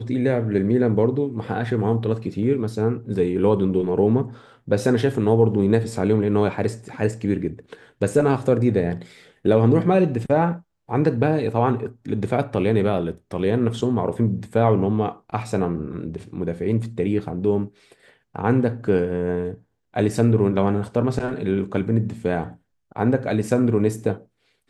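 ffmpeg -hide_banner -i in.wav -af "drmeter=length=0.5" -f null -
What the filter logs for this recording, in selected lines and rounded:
Channel 1: DR: 10.8
Overall DR: 10.8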